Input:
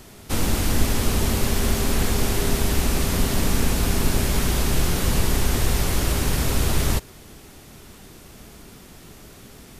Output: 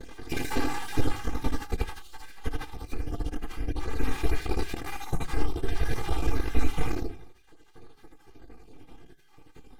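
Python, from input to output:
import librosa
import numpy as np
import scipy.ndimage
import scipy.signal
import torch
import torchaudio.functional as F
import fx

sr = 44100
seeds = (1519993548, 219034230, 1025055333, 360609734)

y = fx.spec_dropout(x, sr, seeds[0], share_pct=63)
y = fx.lowpass(y, sr, hz=1400.0, slope=6)
y = fx.low_shelf(y, sr, hz=400.0, db=-4.0)
y = fx.room_early_taps(y, sr, ms=(57, 79), db=(-10.0, -3.0))
y = np.maximum(y, 0.0)
y = fx.peak_eq(y, sr, hz=190.0, db=9.5, octaves=0.71)
y = y + 0.73 * np.pad(y, (int(2.8 * sr / 1000.0), 0))[:len(y)]
y = fx.rider(y, sr, range_db=10, speed_s=0.5)
y = fx.room_shoebox(y, sr, seeds[1], volume_m3=200.0, walls='furnished', distance_m=0.46)
y = fx.pitch_keep_formants(y, sr, semitones=2.0)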